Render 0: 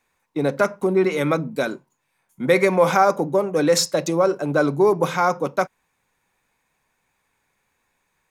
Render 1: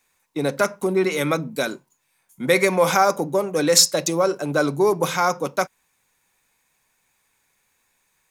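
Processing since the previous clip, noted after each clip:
high-shelf EQ 3,100 Hz +11.5 dB
level −2 dB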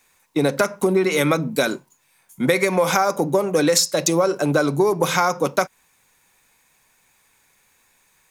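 downward compressor 12 to 1, threshold −21 dBFS, peak gain reduction 12.5 dB
level +7 dB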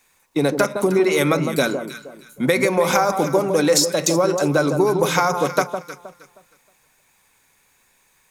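delay that swaps between a low-pass and a high-pass 157 ms, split 1,200 Hz, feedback 50%, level −6 dB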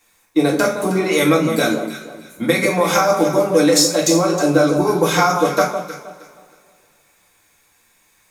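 convolution reverb, pre-delay 3 ms, DRR −2.5 dB
level −2 dB

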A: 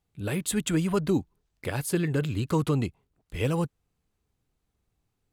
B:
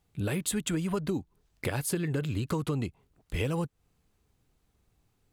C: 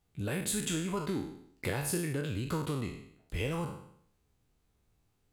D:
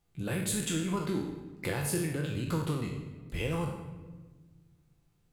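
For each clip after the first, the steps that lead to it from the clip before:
downward compressor, threshold −34 dBFS, peak gain reduction 13.5 dB; level +6 dB
peak hold with a decay on every bin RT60 0.67 s; level −5 dB
rectangular room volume 1,300 cubic metres, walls mixed, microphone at 0.81 metres

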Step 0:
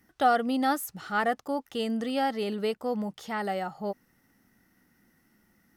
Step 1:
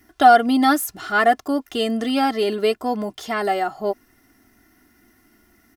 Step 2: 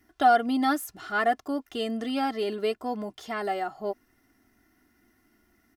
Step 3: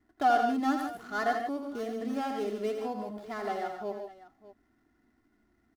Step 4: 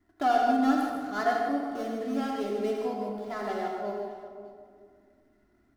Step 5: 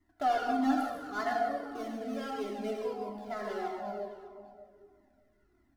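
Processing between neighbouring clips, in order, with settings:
comb filter 2.9 ms, depth 78%; level +8 dB
high-shelf EQ 5,700 Hz −4 dB; level −8 dB
running median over 15 samples; on a send: multi-tap delay 83/141/159/600 ms −7/−8.5/−10.5/−17.5 dB; on the sum: level −5 dB
convolution reverb RT60 2.0 s, pre-delay 3 ms, DRR 1.5 dB
in parallel at −9 dB: hard clipping −22 dBFS, distortion −14 dB; on the sum: flanger whose copies keep moving one way falling 1.6 Hz; level −2 dB

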